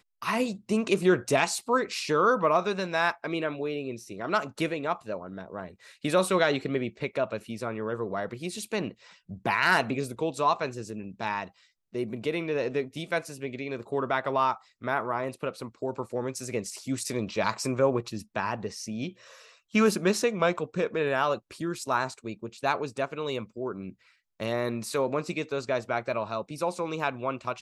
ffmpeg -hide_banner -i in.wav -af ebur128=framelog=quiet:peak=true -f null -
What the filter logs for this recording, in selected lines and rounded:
Integrated loudness:
  I:         -29.2 LUFS
  Threshold: -39.4 LUFS
Loudness range:
  LRA:         5.1 LU
  Threshold: -49.6 LUFS
  LRA low:   -32.0 LUFS
  LRA high:  -27.0 LUFS
True peak:
  Peak:       -8.6 dBFS